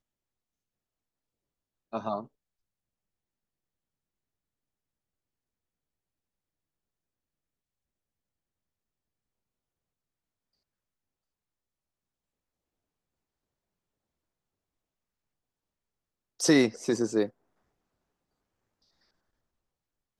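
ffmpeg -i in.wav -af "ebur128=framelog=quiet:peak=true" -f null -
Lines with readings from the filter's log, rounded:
Integrated loudness:
  I:         -27.6 LUFS
  Threshold: -38.1 LUFS
Loudness range:
  LRA:        12.9 LU
  Threshold: -53.1 LUFS
  LRA low:   -43.1 LUFS
  LRA high:  -30.3 LUFS
True peak:
  Peak:       -9.3 dBFS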